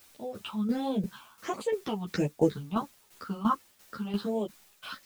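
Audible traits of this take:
phaser sweep stages 6, 1.4 Hz, lowest notch 470–1,500 Hz
a quantiser's noise floor 10 bits, dither triangular
tremolo saw down 2.9 Hz, depth 70%
a shimmering, thickened sound

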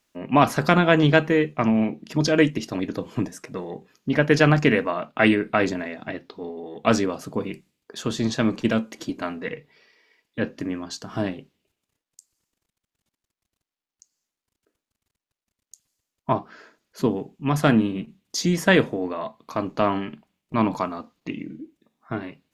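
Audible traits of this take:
background noise floor −91 dBFS
spectral slope −5.0 dB per octave

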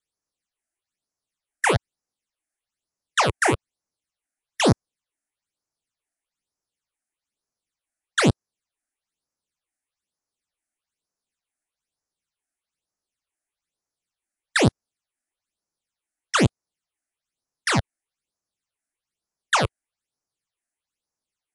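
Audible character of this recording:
phaser sweep stages 8, 1.1 Hz, lowest notch 130–3,300 Hz
MP3

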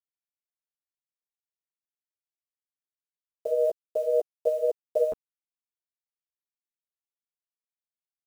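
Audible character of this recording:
a quantiser's noise floor 8 bits, dither none
tremolo triangle 1.9 Hz, depth 60%
a shimmering, thickened sound

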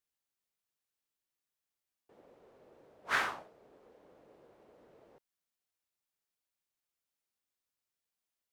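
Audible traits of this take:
background noise floor −90 dBFS
spectral slope −1.5 dB per octave

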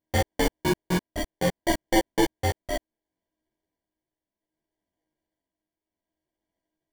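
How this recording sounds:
a buzz of ramps at a fixed pitch in blocks of 8 samples
tremolo triangle 0.65 Hz, depth 55%
aliases and images of a low sample rate 1,300 Hz, jitter 0%
a shimmering, thickened sound

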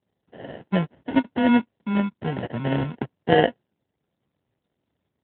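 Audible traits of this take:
phaser sweep stages 4, 2.7 Hz, lowest notch 650–2,700 Hz
aliases and images of a low sample rate 1,200 Hz, jitter 0%
AMR narrowband

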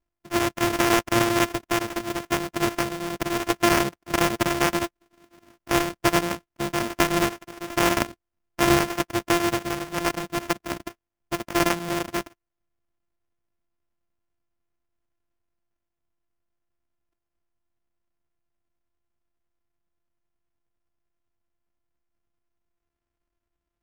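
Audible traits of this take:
a buzz of ramps at a fixed pitch in blocks of 128 samples
chopped level 10 Hz, depth 60%, duty 90%
aliases and images of a low sample rate 4,100 Hz, jitter 20%

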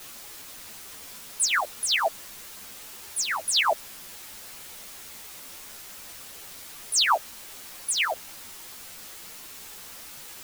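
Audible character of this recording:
tremolo triangle 7.9 Hz, depth 65%
a quantiser's noise floor 8 bits, dither triangular
a shimmering, thickened sound

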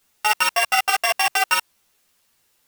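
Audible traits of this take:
a buzz of ramps at a fixed pitch in blocks of 16 samples
tremolo triangle 6.3 Hz, depth 70%
a quantiser's noise floor 12 bits, dither triangular
a shimmering, thickened sound

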